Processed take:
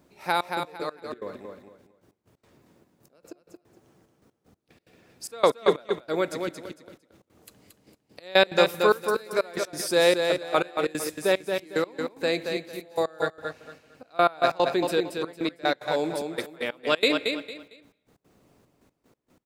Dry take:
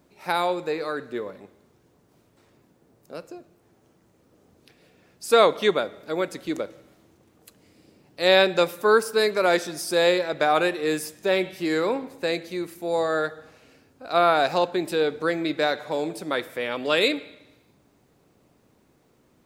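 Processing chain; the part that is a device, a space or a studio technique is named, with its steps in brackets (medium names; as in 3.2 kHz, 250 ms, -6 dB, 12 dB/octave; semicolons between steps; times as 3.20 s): trance gate with a delay (trance gate "xxxxx..x..x..x." 185 bpm -24 dB; feedback delay 227 ms, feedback 25%, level -5.5 dB)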